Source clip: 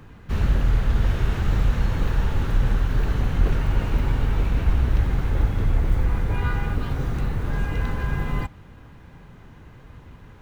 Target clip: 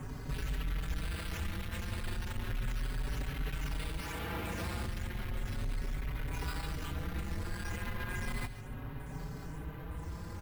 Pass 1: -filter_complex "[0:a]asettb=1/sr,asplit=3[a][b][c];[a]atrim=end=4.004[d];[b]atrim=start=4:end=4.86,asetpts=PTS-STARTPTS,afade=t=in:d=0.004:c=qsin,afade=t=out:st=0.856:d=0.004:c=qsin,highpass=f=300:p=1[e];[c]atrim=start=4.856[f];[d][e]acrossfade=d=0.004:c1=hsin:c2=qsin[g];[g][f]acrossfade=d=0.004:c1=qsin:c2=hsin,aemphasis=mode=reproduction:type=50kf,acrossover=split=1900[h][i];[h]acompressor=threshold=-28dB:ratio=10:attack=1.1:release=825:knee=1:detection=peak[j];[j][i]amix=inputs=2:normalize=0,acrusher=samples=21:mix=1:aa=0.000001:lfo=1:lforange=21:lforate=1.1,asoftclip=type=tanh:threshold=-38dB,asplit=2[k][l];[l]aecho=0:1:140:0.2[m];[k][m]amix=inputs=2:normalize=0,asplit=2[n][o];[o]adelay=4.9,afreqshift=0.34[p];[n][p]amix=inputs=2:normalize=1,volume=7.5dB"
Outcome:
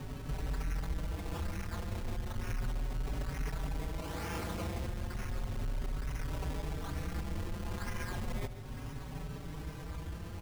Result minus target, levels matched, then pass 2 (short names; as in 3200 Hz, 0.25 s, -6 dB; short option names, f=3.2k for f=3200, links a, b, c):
decimation with a swept rate: distortion +7 dB
-filter_complex "[0:a]asettb=1/sr,asplit=3[a][b][c];[a]atrim=end=4.004[d];[b]atrim=start=4:end=4.86,asetpts=PTS-STARTPTS,afade=t=in:d=0.004:c=qsin,afade=t=out:st=0.856:d=0.004:c=qsin,highpass=f=300:p=1[e];[c]atrim=start=4.856[f];[d][e]acrossfade=d=0.004:c1=hsin:c2=qsin[g];[g][f]acrossfade=d=0.004:c1=qsin:c2=hsin,aemphasis=mode=reproduction:type=50kf,acrossover=split=1900[h][i];[h]acompressor=threshold=-28dB:ratio=10:attack=1.1:release=825:knee=1:detection=peak[j];[j][i]amix=inputs=2:normalize=0,acrusher=samples=5:mix=1:aa=0.000001:lfo=1:lforange=5:lforate=1.1,asoftclip=type=tanh:threshold=-38dB,asplit=2[k][l];[l]aecho=0:1:140:0.2[m];[k][m]amix=inputs=2:normalize=0,asplit=2[n][o];[o]adelay=4.9,afreqshift=0.34[p];[n][p]amix=inputs=2:normalize=1,volume=7.5dB"